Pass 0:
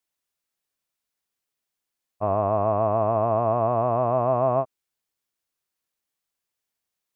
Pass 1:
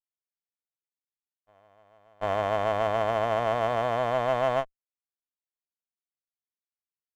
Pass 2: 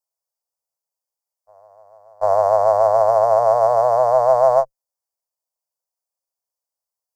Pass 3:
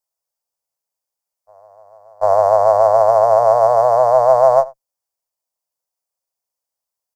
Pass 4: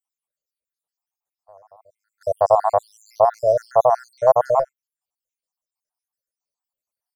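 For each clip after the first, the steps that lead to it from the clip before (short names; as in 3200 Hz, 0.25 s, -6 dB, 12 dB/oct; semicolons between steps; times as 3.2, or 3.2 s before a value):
reverse echo 0.742 s -23.5 dB; power-law curve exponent 1.4; running maximum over 9 samples
EQ curve 130 Hz 0 dB, 210 Hz -28 dB, 540 Hz +13 dB, 970 Hz +11 dB, 3100 Hz -25 dB, 4700 Hz +9 dB
outdoor echo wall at 15 m, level -21 dB; gain +3 dB
random spectral dropouts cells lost 76%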